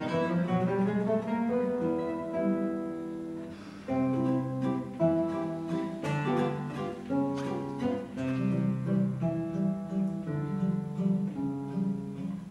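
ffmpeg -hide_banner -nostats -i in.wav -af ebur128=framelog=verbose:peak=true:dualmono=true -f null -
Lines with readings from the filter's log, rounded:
Integrated loudness:
  I:         -28.1 LUFS
  Threshold: -38.2 LUFS
Loudness range:
  LRA:         1.4 LU
  Threshold: -48.3 LUFS
  LRA low:   -29.0 LUFS
  LRA high:  -27.6 LUFS
True peak:
  Peak:      -14.8 dBFS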